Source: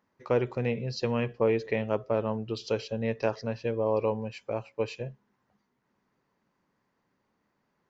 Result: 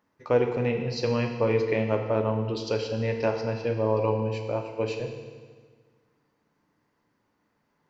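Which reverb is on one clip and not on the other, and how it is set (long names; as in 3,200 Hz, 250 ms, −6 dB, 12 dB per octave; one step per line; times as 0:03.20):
feedback delay network reverb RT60 1.6 s, low-frequency decay 1.1×, high-frequency decay 0.95×, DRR 3.5 dB
level +1.5 dB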